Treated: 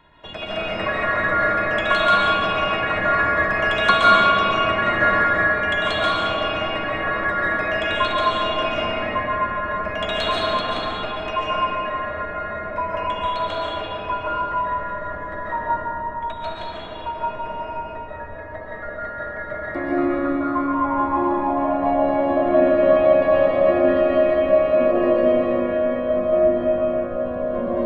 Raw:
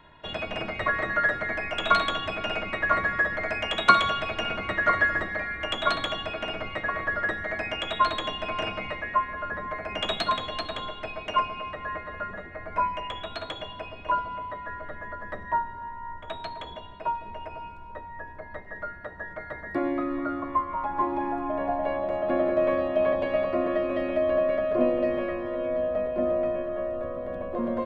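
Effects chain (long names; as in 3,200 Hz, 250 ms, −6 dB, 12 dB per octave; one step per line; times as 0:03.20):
comb and all-pass reverb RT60 3.9 s, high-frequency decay 0.4×, pre-delay 100 ms, DRR −7.5 dB
level −1 dB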